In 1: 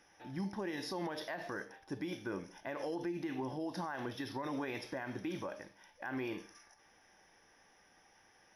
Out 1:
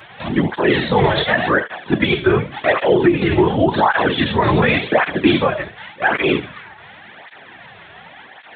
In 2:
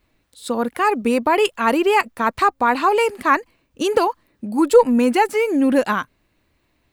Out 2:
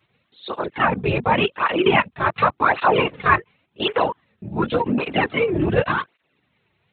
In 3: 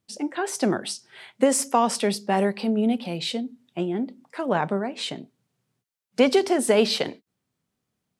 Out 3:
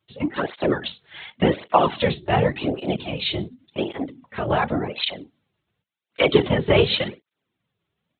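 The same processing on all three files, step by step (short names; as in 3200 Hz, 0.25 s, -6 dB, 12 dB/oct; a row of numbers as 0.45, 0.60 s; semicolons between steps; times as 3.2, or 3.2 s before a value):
LPC vocoder at 8 kHz whisper; HPF 93 Hz 12 dB/oct; high shelf 2600 Hz +8.5 dB; tape flanging out of phase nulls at 0.89 Hz, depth 4.3 ms; normalise peaks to -1.5 dBFS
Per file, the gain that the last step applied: +28.0, +1.5, +6.0 dB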